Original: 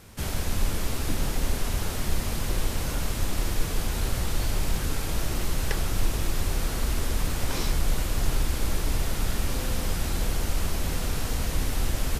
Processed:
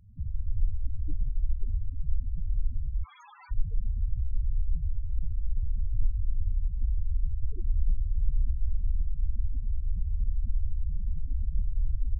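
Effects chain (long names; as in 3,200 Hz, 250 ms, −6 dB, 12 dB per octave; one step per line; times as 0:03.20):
0:03.04–0:03.51: high-pass filter 770 Hz 24 dB per octave
spectral peaks only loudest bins 4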